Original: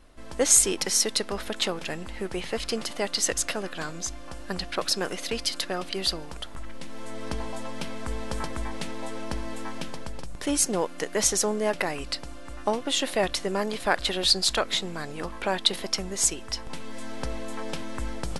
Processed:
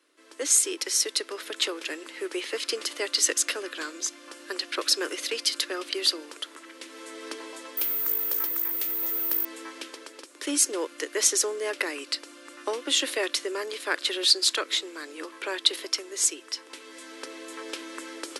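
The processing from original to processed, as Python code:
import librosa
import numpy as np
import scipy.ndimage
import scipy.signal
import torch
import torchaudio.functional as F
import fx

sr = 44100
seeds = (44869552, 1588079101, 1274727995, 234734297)

y = fx.resample_bad(x, sr, factor=3, down='none', up='zero_stuff', at=(7.77, 9.45))
y = fx.peak_eq(y, sr, hz=740.0, db=-15.0, octaves=0.76)
y = fx.rider(y, sr, range_db=4, speed_s=2.0)
y = scipy.signal.sosfilt(scipy.signal.butter(12, 290.0, 'highpass', fs=sr, output='sos'), y)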